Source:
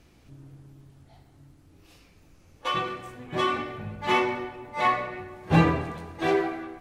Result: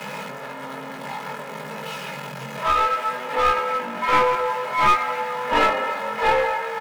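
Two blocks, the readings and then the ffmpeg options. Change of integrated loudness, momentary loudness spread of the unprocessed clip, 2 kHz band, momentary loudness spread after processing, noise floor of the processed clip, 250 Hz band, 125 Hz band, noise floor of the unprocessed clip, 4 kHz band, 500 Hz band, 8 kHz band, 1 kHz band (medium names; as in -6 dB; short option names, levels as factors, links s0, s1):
+5.0 dB, 14 LU, +7.0 dB, 15 LU, -35 dBFS, -6.0 dB, -9.5 dB, -57 dBFS, +4.5 dB, +5.5 dB, +9.5 dB, +9.0 dB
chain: -filter_complex "[0:a]aeval=exprs='val(0)+0.5*0.0299*sgn(val(0))':c=same,acrossover=split=470 2500:gain=0.178 1 0.178[s0][s1][s2];[s0][s1][s2]amix=inputs=3:normalize=0,aecho=1:1:2.5:0.66,asplit=2[s3][s4];[s4]acompressor=threshold=0.0126:ratio=6,volume=0.708[s5];[s3][s5]amix=inputs=2:normalize=0,afreqshift=130,flanger=delay=19.5:depth=2.5:speed=0.57,aeval=exprs='clip(val(0),-1,0.0473)':c=same,volume=2.66"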